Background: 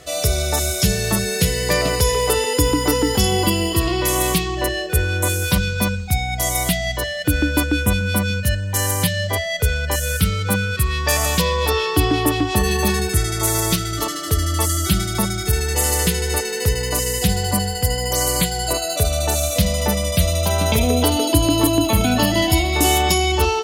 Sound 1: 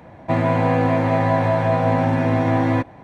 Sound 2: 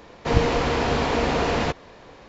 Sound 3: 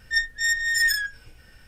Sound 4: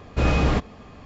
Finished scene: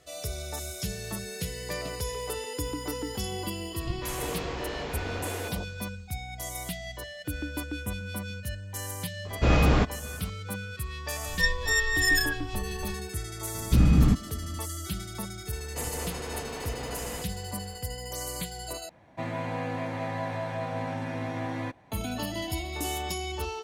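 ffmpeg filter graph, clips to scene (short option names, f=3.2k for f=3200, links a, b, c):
-filter_complex "[2:a]asplit=2[a][b];[4:a]asplit=2[c][d];[0:a]volume=-16dB[e];[a]acrossover=split=200|910[f][g][h];[h]adelay=240[i];[g]adelay=390[j];[f][j][i]amix=inputs=3:normalize=0[k];[3:a]bass=f=250:g=15,treble=f=4k:g=1[l];[d]lowshelf=f=340:t=q:w=1.5:g=12.5[m];[b]acompressor=threshold=-25dB:ratio=6:attack=3.2:release=140:knee=1:detection=peak[n];[1:a]highshelf=f=2.3k:g=12[o];[e]asplit=2[p][q];[p]atrim=end=18.894[r];[o]atrim=end=3.03,asetpts=PTS-STARTPTS,volume=-15.5dB[s];[q]atrim=start=21.916[t];[k]atrim=end=2.28,asetpts=PTS-STARTPTS,volume=-12dB,afade=t=in:d=0.004:c=hsin,afade=t=out:st=2.276:d=0.004:c=hsin,adelay=155673S[u];[c]atrim=end=1.05,asetpts=PTS-STARTPTS,volume=-1dB,afade=t=in:d=0.004:c=hsin,afade=t=out:st=1.046:d=0.004:c=hsin,adelay=9250[v];[l]atrim=end=1.67,asetpts=PTS-STARTPTS,volume=-3dB,afade=t=in:d=0.004:c=hsin,afade=t=out:st=1.666:d=0.004:c=hsin,adelay=11270[w];[m]atrim=end=1.05,asetpts=PTS-STARTPTS,volume=-11.5dB,afade=t=in:d=0.004:c=hsin,afade=t=out:st=1.046:d=0.004:c=hsin,adelay=13550[x];[n]atrim=end=2.28,asetpts=PTS-STARTPTS,volume=-9.5dB,afade=t=in:d=0.004:c=hsin,afade=t=out:st=2.276:d=0.004:c=hsin,adelay=15510[y];[r][s]acrossfade=d=0.004:c1=hsin:c2=hsin[z];[z][t]acrossfade=d=0.004:c1=hsin:c2=hsin[aa];[aa][u][v][w][x][y]amix=inputs=6:normalize=0"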